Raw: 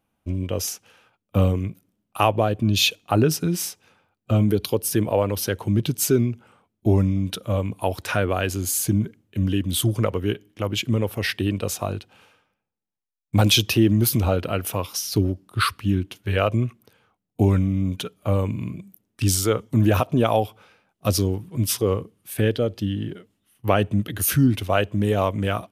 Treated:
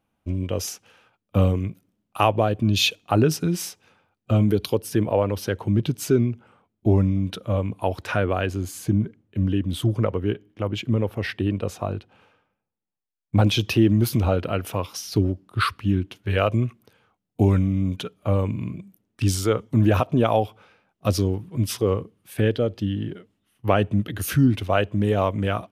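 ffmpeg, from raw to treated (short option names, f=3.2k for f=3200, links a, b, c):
-af "asetnsamples=n=441:p=0,asendcmd='4.78 lowpass f 2700;8.46 lowpass f 1600;13.61 lowpass f 3500;16.3 lowpass f 7000;17.96 lowpass f 3800',lowpass=f=6.2k:p=1"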